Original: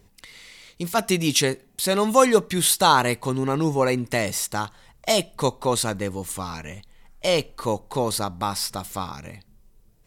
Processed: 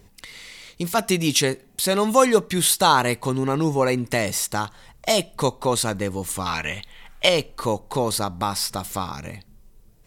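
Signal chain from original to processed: 6.46–7.29 EQ curve 270 Hz 0 dB, 3400 Hz +13 dB, 4800 Hz +3 dB; in parallel at -1.5 dB: compressor, threshold -30 dBFS, peak gain reduction 18 dB; on the sum: gain -1 dB

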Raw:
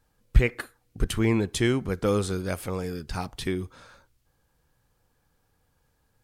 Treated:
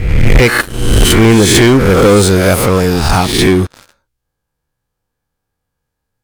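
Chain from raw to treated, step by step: spectral swells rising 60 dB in 0.79 s; sample leveller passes 5; gain +2.5 dB

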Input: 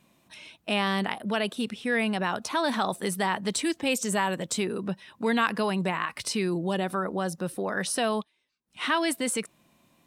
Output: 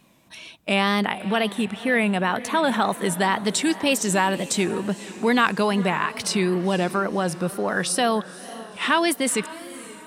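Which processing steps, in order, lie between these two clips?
1.05–3.18 bell 5000 Hz -11.5 dB 0.42 oct; diffused feedback echo 0.51 s, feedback 47%, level -16 dB; wow and flutter 90 cents; gain +5.5 dB

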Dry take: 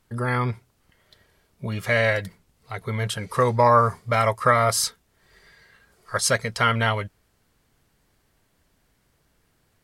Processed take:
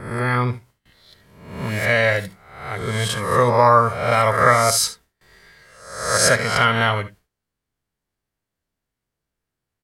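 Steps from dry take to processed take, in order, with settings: spectral swells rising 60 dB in 0.75 s; gate with hold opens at -49 dBFS; early reflections 57 ms -17 dB, 73 ms -16.5 dB; gain +2 dB

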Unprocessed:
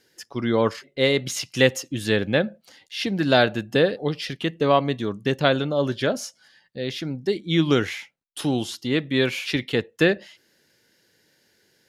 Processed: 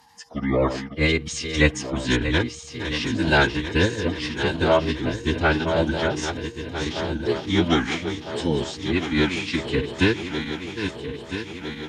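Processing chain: regenerating reverse delay 0.653 s, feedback 77%, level -9 dB; whine 810 Hz -53 dBFS; formant-preserving pitch shift -9.5 st

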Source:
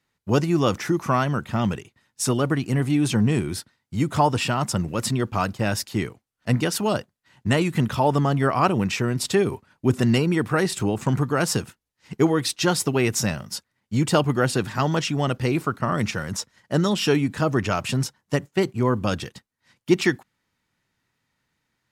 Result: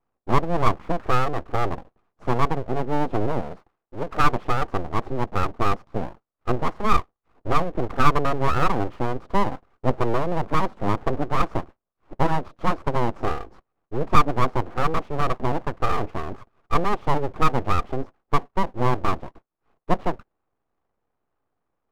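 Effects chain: one diode to ground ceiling -19.5 dBFS; synth low-pass 610 Hz, resonance Q 6.6; full-wave rectifier; 3.41–4.24 low shelf 370 Hz -5.5 dB; gain -1 dB

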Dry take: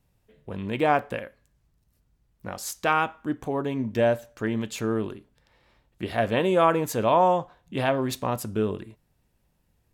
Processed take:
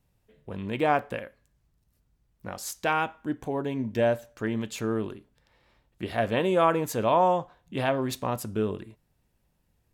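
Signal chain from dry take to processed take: 2.83–4.02 notch 1200 Hz, Q 6.6; gain -2 dB

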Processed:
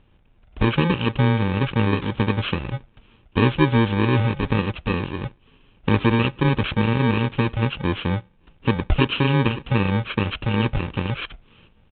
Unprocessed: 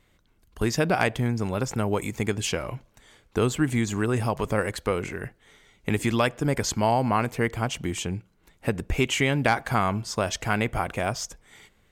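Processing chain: FFT order left unsorted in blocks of 64 samples; downsampling 8000 Hz; gain +8.5 dB

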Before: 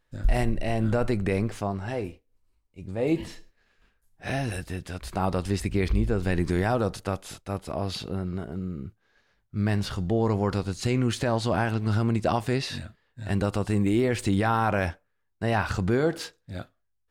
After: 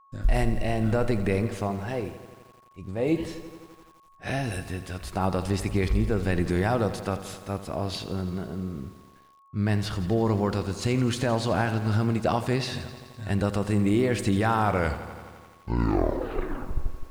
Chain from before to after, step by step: tape stop at the end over 2.59 s; gate with hold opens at -56 dBFS; whine 1100 Hz -55 dBFS; lo-fi delay 85 ms, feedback 80%, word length 8-bit, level -14 dB

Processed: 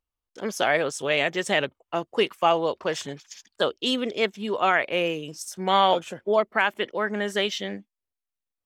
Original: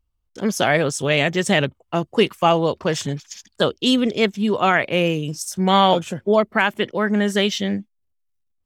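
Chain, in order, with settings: tone controls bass -14 dB, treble -4 dB; gain -3.5 dB

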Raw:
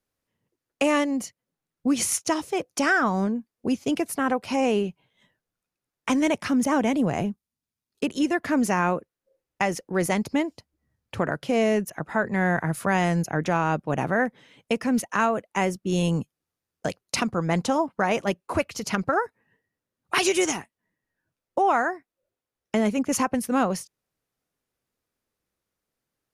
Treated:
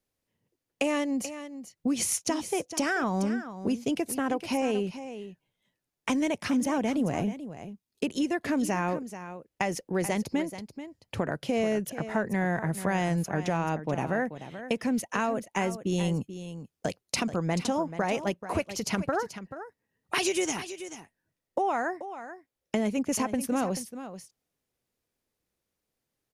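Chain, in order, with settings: bell 1300 Hz -5 dB 0.81 oct; compressor 2.5:1, threshold -26 dBFS, peak gain reduction 6 dB; on a send: echo 0.434 s -12 dB

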